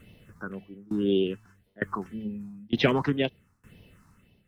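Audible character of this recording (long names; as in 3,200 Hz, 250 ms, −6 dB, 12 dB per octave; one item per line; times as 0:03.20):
a quantiser's noise floor 12 bits, dither none
phaser sweep stages 4, 1.9 Hz, lowest notch 500–1,300 Hz
tremolo saw down 1.1 Hz, depth 95%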